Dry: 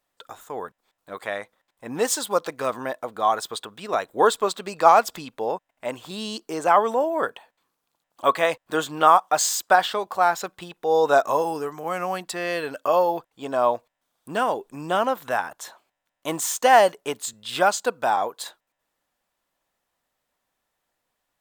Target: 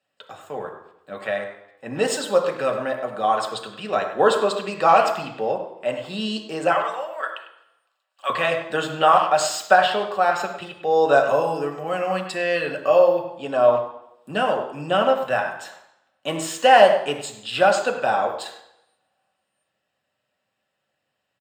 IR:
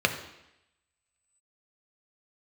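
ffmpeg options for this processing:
-filter_complex "[0:a]asettb=1/sr,asplit=3[s0][s1][s2];[s0]atrim=end=6.724[s3];[s1]atrim=start=6.72:end=8.3,asetpts=PTS-STARTPTS,afade=t=in:d=0.004:c=qsin,afade=t=out:st=1.576:d=0.004:c=qsin,highpass=1200[s4];[s2]atrim=start=8.296[s5];[s3][s4]acrossfade=d=0.004:c1=hsin:c2=qsin[s6];[s6][s5]acrossfade=d=0.004:c1=qsin:c2=hsin,asplit=2[s7][s8];[s8]adelay=100,highpass=300,lowpass=3400,asoftclip=type=hard:threshold=0.299,volume=0.282[s9];[s7][s9]amix=inputs=2:normalize=0[s10];[1:a]atrim=start_sample=2205,asetrate=48510,aresample=44100[s11];[s10][s11]afir=irnorm=-1:irlink=0,volume=0.335"

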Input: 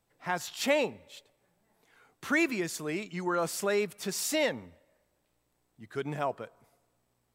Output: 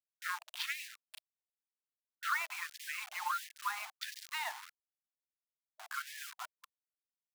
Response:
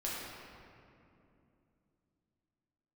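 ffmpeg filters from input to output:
-filter_complex "[0:a]equalizer=f=125:t=o:w=1:g=7,equalizer=f=250:t=o:w=1:g=-6,equalizer=f=500:t=o:w=1:g=-5,equalizer=f=1000:t=o:w=1:g=11,equalizer=f=4000:t=o:w=1:g=7,equalizer=f=8000:t=o:w=1:g=-3,acompressor=threshold=0.0178:ratio=12,equalizer=f=500:t=o:w=0.26:g=-8.5,asplit=2[s0][s1];[1:a]atrim=start_sample=2205[s2];[s1][s2]afir=irnorm=-1:irlink=0,volume=0.158[s3];[s0][s3]amix=inputs=2:normalize=0,aeval=exprs='val(0)+0.000631*(sin(2*PI*50*n/s)+sin(2*PI*2*50*n/s)/2+sin(2*PI*3*50*n/s)/3+sin(2*PI*4*50*n/s)/4+sin(2*PI*5*50*n/s)/5)':c=same,afftfilt=real='re*gte(hypot(re,im),0.01)':imag='im*gte(hypot(re,im),0.01)':win_size=1024:overlap=0.75,adynamicsmooth=sensitivity=4.5:basefreq=1200,acrusher=bits=7:mix=0:aa=0.000001,afftfilt=real='re*gte(b*sr/1024,630*pow(1700/630,0.5+0.5*sin(2*PI*1.5*pts/sr)))':imag='im*gte(b*sr/1024,630*pow(1700/630,0.5+0.5*sin(2*PI*1.5*pts/sr)))':win_size=1024:overlap=0.75,volume=1.88"

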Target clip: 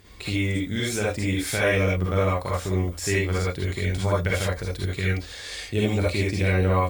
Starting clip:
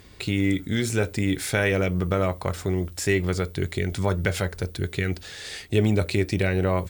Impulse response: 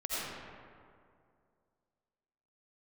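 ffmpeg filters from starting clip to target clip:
-filter_complex "[1:a]atrim=start_sample=2205,atrim=end_sample=6615,asetrate=74970,aresample=44100[s0];[0:a][s0]afir=irnorm=-1:irlink=0,volume=1.5"

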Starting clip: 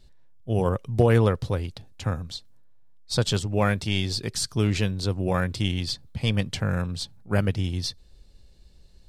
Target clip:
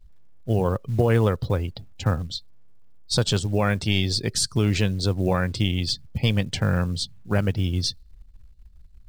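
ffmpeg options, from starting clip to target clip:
-af "afftdn=nr=23:nf=-46,alimiter=limit=0.178:level=0:latency=1:release=301,acrusher=bits=8:mode=log:mix=0:aa=0.000001,volume=1.68"

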